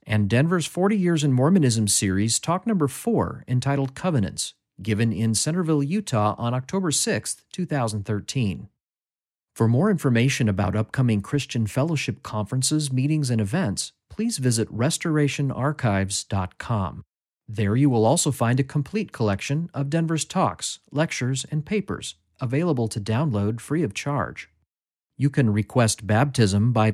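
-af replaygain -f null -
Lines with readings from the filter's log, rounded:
track_gain = +4.7 dB
track_peak = 0.366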